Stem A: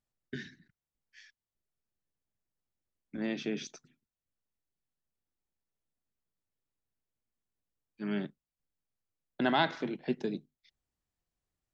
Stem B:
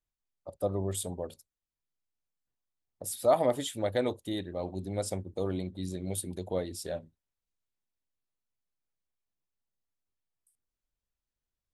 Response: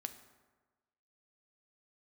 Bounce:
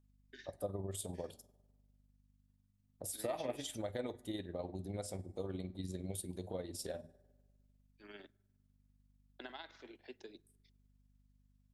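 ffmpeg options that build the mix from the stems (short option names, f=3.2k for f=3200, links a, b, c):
-filter_complex "[0:a]highpass=f=310:w=0.5412,highpass=f=310:w=1.3066,highshelf=f=2.2k:g=9,acompressor=threshold=-32dB:ratio=4,volume=-14dB,asplit=2[a][b];[b]volume=-14.5dB[c];[1:a]acompressor=threshold=-39dB:ratio=3,aeval=exprs='val(0)+0.000398*(sin(2*PI*50*n/s)+sin(2*PI*2*50*n/s)/2+sin(2*PI*3*50*n/s)/3+sin(2*PI*4*50*n/s)/4+sin(2*PI*5*50*n/s)/5)':c=same,flanger=delay=8.3:depth=3.2:regen=-80:speed=0.27:shape=triangular,volume=2.5dB,asplit=2[d][e];[e]volume=-5dB[f];[2:a]atrim=start_sample=2205[g];[c][f]amix=inputs=2:normalize=0[h];[h][g]afir=irnorm=-1:irlink=0[i];[a][d][i]amix=inputs=3:normalize=0,tremolo=f=20:d=0.519"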